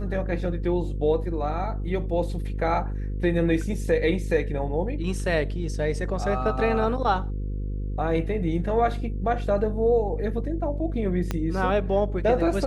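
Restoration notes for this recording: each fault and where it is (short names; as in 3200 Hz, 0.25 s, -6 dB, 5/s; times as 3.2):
buzz 50 Hz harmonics 10 -29 dBFS
11.31 pop -13 dBFS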